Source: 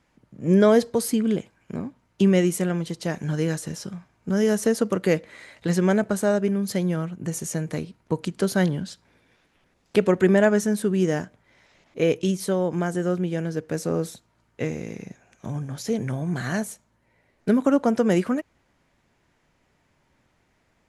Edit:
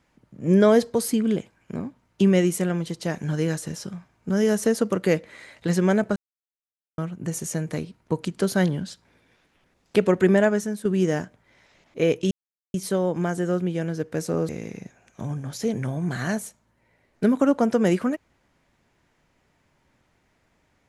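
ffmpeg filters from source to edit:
-filter_complex "[0:a]asplit=6[s0][s1][s2][s3][s4][s5];[s0]atrim=end=6.16,asetpts=PTS-STARTPTS,afade=t=out:st=6.156:d=0.004:c=hsin[s6];[s1]atrim=start=6.16:end=6.98,asetpts=PTS-STARTPTS,volume=0[s7];[s2]atrim=start=6.98:end=10.85,asetpts=PTS-STARTPTS,afade=t=in:d=0.004:c=hsin,afade=t=out:st=3.36:d=0.51:silence=0.334965[s8];[s3]atrim=start=10.85:end=12.31,asetpts=PTS-STARTPTS,afade=t=in:d=0.004:c=hsin:silence=0.334965,afade=t=out:st=1.456:d=0.004:c=hsin,apad=pad_dur=0.43[s9];[s4]atrim=start=12.31:end=14.062,asetpts=PTS-STARTPTS,afade=t=in:d=0.004:c=hsin[s10];[s5]atrim=start=14.738[s11];[s6][s7][s8][s9][s10]concat=n=5:v=0:a=1[s12];[s12][s11]acrossfade=d=0.004:c1=hsin:c2=hsin"

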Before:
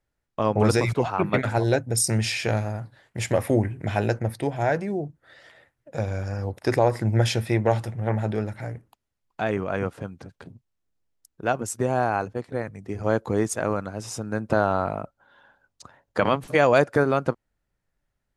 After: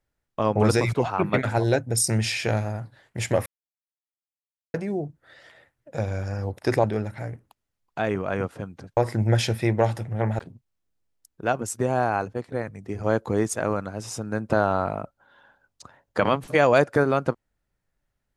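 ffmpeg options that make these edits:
-filter_complex "[0:a]asplit=6[s0][s1][s2][s3][s4][s5];[s0]atrim=end=3.46,asetpts=PTS-STARTPTS,afade=t=out:st=3.456:d=0.004:c=hsin[s6];[s1]atrim=start=3.46:end=4.74,asetpts=PTS-STARTPTS,volume=0[s7];[s2]atrim=start=4.74:end=6.842,asetpts=PTS-STARTPTS,afade=t=in:d=0.004:c=hsin[s8];[s3]atrim=start=8.258:end=10.392[s9];[s4]atrim=start=6.838:end=8.262[s10];[s5]atrim=start=10.388[s11];[s6][s7][s8]concat=n=3:v=0:a=1[s12];[s12][s9]acrossfade=d=0.004:c1=hsin:c2=hsin[s13];[s13][s10]acrossfade=d=0.004:c1=hsin:c2=hsin[s14];[s14][s11]acrossfade=d=0.004:c1=hsin:c2=hsin"

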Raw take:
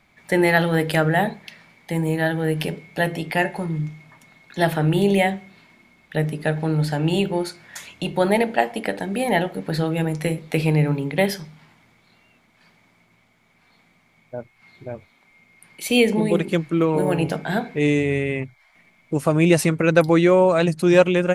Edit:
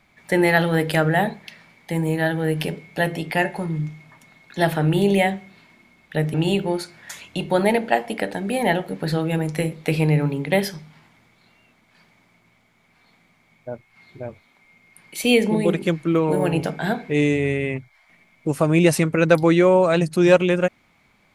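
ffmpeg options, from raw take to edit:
-filter_complex "[0:a]asplit=2[s0][s1];[s0]atrim=end=6.342[s2];[s1]atrim=start=6.998[s3];[s2][s3]acrossfade=d=0.004:c1=hsin:c2=hsin"

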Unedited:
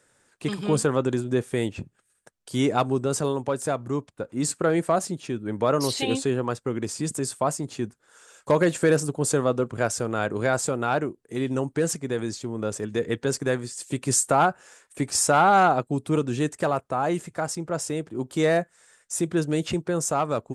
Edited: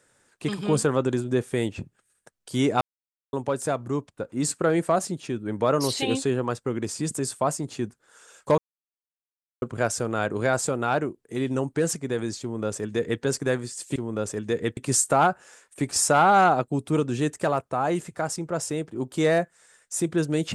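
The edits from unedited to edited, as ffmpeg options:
-filter_complex "[0:a]asplit=7[s0][s1][s2][s3][s4][s5][s6];[s0]atrim=end=2.81,asetpts=PTS-STARTPTS,afade=t=out:st=2.806:d=0.004:c=hsin[s7];[s1]atrim=start=2.81:end=3.33,asetpts=PTS-STARTPTS,volume=0[s8];[s2]atrim=start=3.33:end=8.58,asetpts=PTS-STARTPTS,afade=t=in:d=0.004:c=hsin,afade=t=out:st=5.246:d=0.004:c=hsin[s9];[s3]atrim=start=8.58:end=9.62,asetpts=PTS-STARTPTS,volume=0[s10];[s4]atrim=start=9.62:end=13.962,asetpts=PTS-STARTPTS,afade=t=in:d=0.004:c=hsin[s11];[s5]atrim=start=12.418:end=13.232[s12];[s6]atrim=start=13.958[s13];[s7][s8][s9][s10][s11]concat=n=5:v=0:a=1[s14];[s14][s12]acrossfade=d=0.004:c1=hsin:c2=hsin[s15];[s15][s13]acrossfade=d=0.004:c1=hsin:c2=hsin"

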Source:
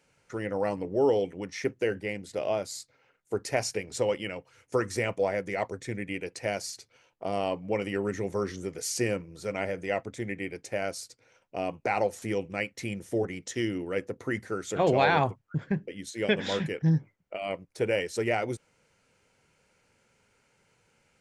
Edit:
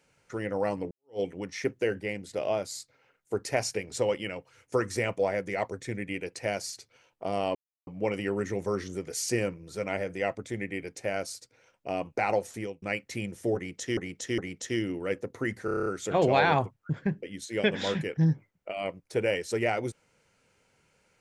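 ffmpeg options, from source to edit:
-filter_complex "[0:a]asplit=13[s0][s1][s2][s3][s4][s5][s6][s7][s8][s9][s10][s11][s12];[s0]atrim=end=0.91,asetpts=PTS-STARTPTS,afade=t=out:st=0.906:d=0.004:c=hsin[s13];[s1]atrim=start=0.91:end=7.55,asetpts=PTS-STARTPTS,afade=t=in:d=0.29:c=exp,afade=t=out:st=6.636:d=0.004:c=hsin,apad=pad_dur=0.32[s14];[s2]atrim=start=7.55:end=12.5,asetpts=PTS-STARTPTS,afade=t=in:d=0.004:c=hsin,afade=t=out:st=4.48:d=0.47:c=qsin[s15];[s3]atrim=start=12.5:end=13.652,asetpts=PTS-STARTPTS,afade=t=in:d=0.004:c=hsin[s16];[s4]atrim=start=13.238:end=13.652[s17];[s5]atrim=start=13.238:end=14.542[s18];[s6]atrim=start=14.508:end=14.542[s19];[s7]atrim=start=14.508:end=14.542[s20];[s8]atrim=start=14.508:end=14.542[s21];[s9]atrim=start=14.508:end=14.542[s22];[s10]atrim=start=14.508:end=14.542[s23];[s11]atrim=start=14.508:end=14.542[s24];[s12]atrim=start=14.508[s25];[s13][s14][s15][s16]concat=n=4:v=0:a=1[s26];[s26][s17]acrossfade=d=0.004:c1=hsin:c2=hsin[s27];[s27][s18]acrossfade=d=0.004:c1=hsin:c2=hsin[s28];[s28][s19]acrossfade=d=0.004:c1=hsin:c2=hsin[s29];[s29][s20]acrossfade=d=0.004:c1=hsin:c2=hsin[s30];[s30][s21]acrossfade=d=0.004:c1=hsin:c2=hsin[s31];[s31][s22]acrossfade=d=0.004:c1=hsin:c2=hsin[s32];[s32][s23]acrossfade=d=0.004:c1=hsin:c2=hsin[s33];[s33][s24]acrossfade=d=0.004:c1=hsin:c2=hsin[s34];[s34][s25]acrossfade=d=0.004:c1=hsin:c2=hsin"

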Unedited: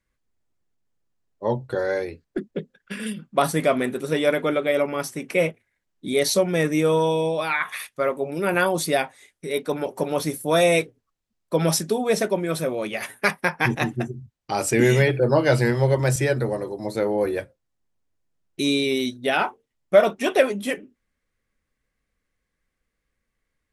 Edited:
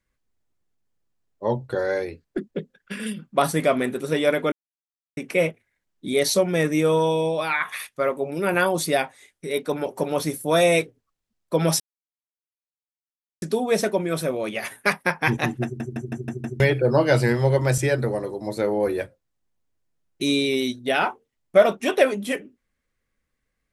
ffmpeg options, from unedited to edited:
-filter_complex "[0:a]asplit=10[s0][s1][s2][s3][s4][s5][s6][s7][s8][s9];[s0]atrim=end=4.52,asetpts=PTS-STARTPTS,afade=t=out:st=4.516:d=0.004:c=hsin[s10];[s1]atrim=start=4.52:end=5.17,asetpts=PTS-STARTPTS,volume=0[s11];[s2]atrim=start=5.17:end=11.8,asetpts=PTS-STARTPTS,afade=t=in:d=0.004:c=hsin,afade=t=out:st=6.626:d=0.004:c=hsin,apad=pad_dur=1.62[s12];[s3]atrim=start=11.8:end=14.182,asetpts=PTS-STARTPTS,afade=t=in:d=0.004:c=hsin[s13];[s4]atrim=start=14.018:end=14.182[s14];[s5]atrim=start=14.018:end=14.182[s15];[s6]atrim=start=14.018:end=14.182[s16];[s7]atrim=start=14.018:end=14.182[s17];[s8]atrim=start=14.018:end=14.182[s18];[s9]atrim=start=14.978[s19];[s10][s11][s12][s13]concat=n=4:v=0:a=1[s20];[s20][s14]acrossfade=d=0.004:c1=hsin:c2=hsin[s21];[s21][s15]acrossfade=d=0.004:c1=hsin:c2=hsin[s22];[s22][s16]acrossfade=d=0.004:c1=hsin:c2=hsin[s23];[s23][s17]acrossfade=d=0.004:c1=hsin:c2=hsin[s24];[s24][s18]acrossfade=d=0.004:c1=hsin:c2=hsin[s25];[s25][s19]acrossfade=d=0.004:c1=hsin:c2=hsin"

